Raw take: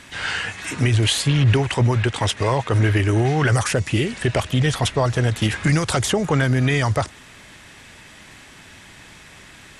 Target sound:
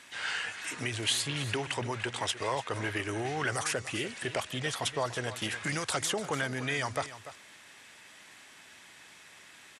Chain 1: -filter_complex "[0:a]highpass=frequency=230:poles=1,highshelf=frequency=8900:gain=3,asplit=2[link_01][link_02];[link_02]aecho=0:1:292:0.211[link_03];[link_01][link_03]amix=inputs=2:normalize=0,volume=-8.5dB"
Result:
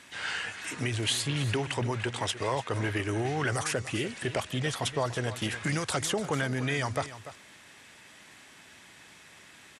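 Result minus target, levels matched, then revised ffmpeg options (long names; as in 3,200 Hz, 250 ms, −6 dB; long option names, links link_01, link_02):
250 Hz band +3.0 dB
-filter_complex "[0:a]highpass=frequency=550:poles=1,highshelf=frequency=8900:gain=3,asplit=2[link_01][link_02];[link_02]aecho=0:1:292:0.211[link_03];[link_01][link_03]amix=inputs=2:normalize=0,volume=-8.5dB"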